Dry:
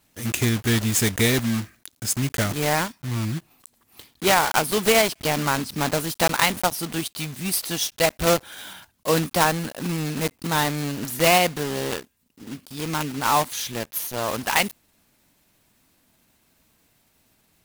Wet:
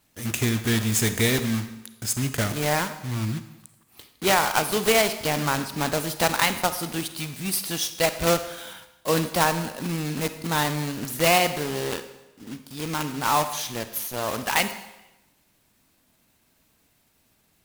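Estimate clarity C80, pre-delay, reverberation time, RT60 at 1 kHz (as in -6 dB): 13.0 dB, 31 ms, 1.0 s, 0.95 s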